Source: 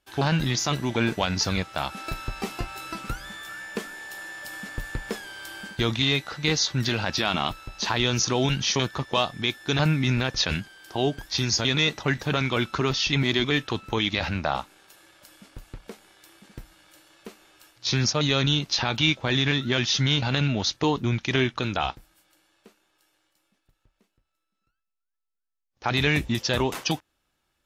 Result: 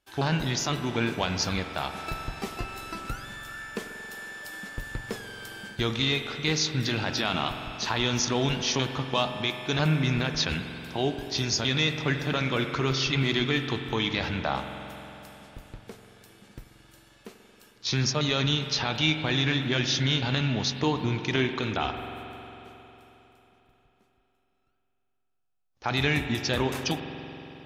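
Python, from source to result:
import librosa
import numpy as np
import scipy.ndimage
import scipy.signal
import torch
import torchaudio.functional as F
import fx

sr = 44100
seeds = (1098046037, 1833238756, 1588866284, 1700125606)

y = fx.rev_spring(x, sr, rt60_s=3.6, pass_ms=(45,), chirp_ms=75, drr_db=6.5)
y = y * librosa.db_to_amplitude(-3.0)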